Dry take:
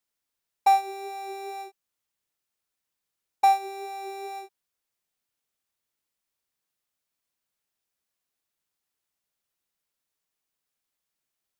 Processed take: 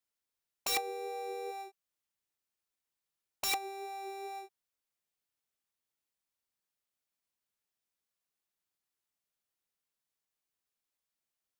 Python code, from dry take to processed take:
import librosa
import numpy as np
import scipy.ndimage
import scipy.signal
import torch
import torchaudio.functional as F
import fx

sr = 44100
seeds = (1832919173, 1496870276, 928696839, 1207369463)

y = (np.mod(10.0 ** (20.0 / 20.0) * x + 1.0, 2.0) - 1.0) / 10.0 ** (20.0 / 20.0)
y = fx.dmg_tone(y, sr, hz=480.0, level_db=-34.0, at=(0.68, 1.5), fade=0.02)
y = y * librosa.db_to_amplitude(-6.0)